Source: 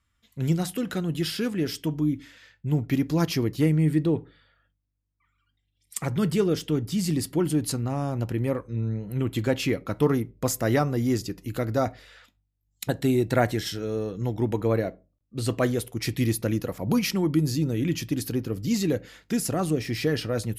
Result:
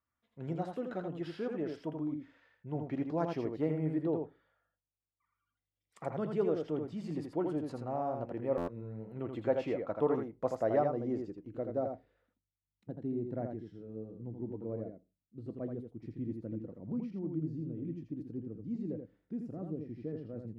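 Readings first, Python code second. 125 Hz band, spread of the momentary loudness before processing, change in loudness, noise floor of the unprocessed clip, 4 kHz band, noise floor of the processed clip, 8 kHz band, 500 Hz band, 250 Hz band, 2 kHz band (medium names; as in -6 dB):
-15.5 dB, 7 LU, -11.0 dB, -75 dBFS, under -25 dB, under -85 dBFS, under -30 dB, -7.0 dB, -11.5 dB, -18.0 dB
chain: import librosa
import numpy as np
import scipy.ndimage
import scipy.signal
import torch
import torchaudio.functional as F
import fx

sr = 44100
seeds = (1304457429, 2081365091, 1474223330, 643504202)

y = fx.filter_sweep_lowpass(x, sr, from_hz=760.0, to_hz=260.0, start_s=10.39, end_s=12.73, q=1.0)
y = fx.tilt_eq(y, sr, slope=4.5)
y = y + 10.0 ** (-5.0 / 20.0) * np.pad(y, (int(82 * sr / 1000.0), 0))[:len(y)]
y = fx.dynamic_eq(y, sr, hz=630.0, q=2.0, threshold_db=-45.0, ratio=4.0, max_db=6)
y = fx.buffer_glitch(y, sr, at_s=(8.57,), block=512, repeats=8)
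y = F.gain(torch.from_numpy(y), -4.5).numpy()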